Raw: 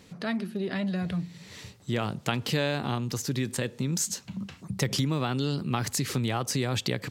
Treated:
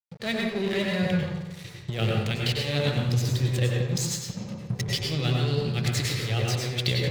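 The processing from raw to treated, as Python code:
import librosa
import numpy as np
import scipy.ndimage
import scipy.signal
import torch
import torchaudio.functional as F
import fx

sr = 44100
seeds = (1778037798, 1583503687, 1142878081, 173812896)

y = fx.spec_quant(x, sr, step_db=15)
y = fx.graphic_eq(y, sr, hz=(125, 250, 500, 1000, 2000, 4000), db=(11, -6, 9, -11, 7, 6))
y = fx.hpss(y, sr, part='harmonic', gain_db=7)
y = fx.dynamic_eq(y, sr, hz=3200.0, q=0.83, threshold_db=-40.0, ratio=4.0, max_db=5)
y = fx.over_compress(y, sr, threshold_db=-18.0, ratio=-0.5)
y = np.sign(y) * np.maximum(np.abs(y) - 10.0 ** (-30.0 / 20.0), 0.0)
y = fx.echo_bbd(y, sr, ms=89, stages=4096, feedback_pct=59, wet_db=-11.0)
y = fx.rev_plate(y, sr, seeds[0], rt60_s=0.58, hf_ratio=0.45, predelay_ms=90, drr_db=-1.0)
y = y * 10.0 ** (-7.5 / 20.0)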